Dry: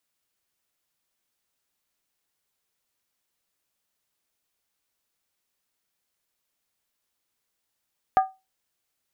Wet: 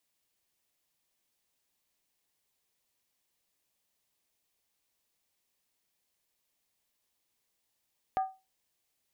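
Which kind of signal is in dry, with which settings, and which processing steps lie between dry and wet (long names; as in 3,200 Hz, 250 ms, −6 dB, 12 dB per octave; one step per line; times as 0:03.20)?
struck skin, lowest mode 762 Hz, decay 0.24 s, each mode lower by 9.5 dB, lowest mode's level −11.5 dB
parametric band 1,400 Hz −7.5 dB 0.35 octaves
downward compressor 3 to 1, threshold −24 dBFS
brickwall limiter −19.5 dBFS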